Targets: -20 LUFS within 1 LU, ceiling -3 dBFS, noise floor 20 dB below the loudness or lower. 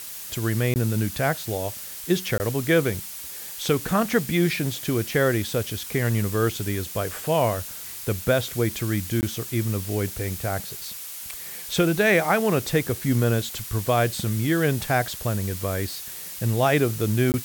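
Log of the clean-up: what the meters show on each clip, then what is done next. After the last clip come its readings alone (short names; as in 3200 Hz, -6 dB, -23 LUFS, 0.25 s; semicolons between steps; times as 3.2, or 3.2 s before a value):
dropouts 4; longest dropout 19 ms; noise floor -37 dBFS; noise floor target -45 dBFS; loudness -24.5 LUFS; peak -7.5 dBFS; loudness target -20.0 LUFS
-> interpolate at 0.74/2.38/9.21/17.32, 19 ms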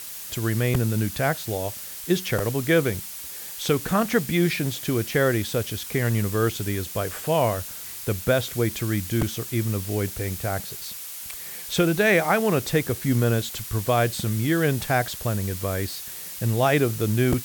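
dropouts 0; noise floor -37 dBFS; noise floor target -45 dBFS
-> denoiser 8 dB, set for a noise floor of -37 dBFS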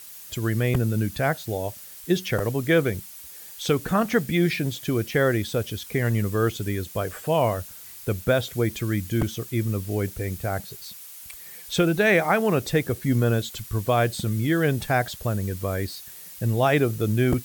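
noise floor -43 dBFS; noise floor target -45 dBFS
-> denoiser 6 dB, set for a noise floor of -43 dBFS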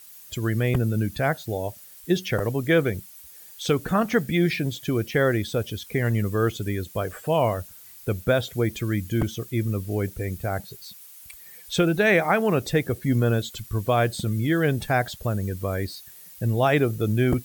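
noise floor -46 dBFS; loudness -24.5 LUFS; peak -8.5 dBFS; loudness target -20.0 LUFS
-> gain +4.5 dB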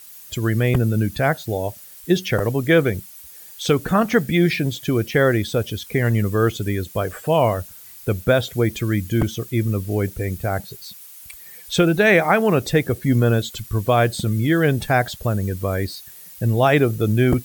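loudness -20.0 LUFS; peak -4.0 dBFS; noise floor -42 dBFS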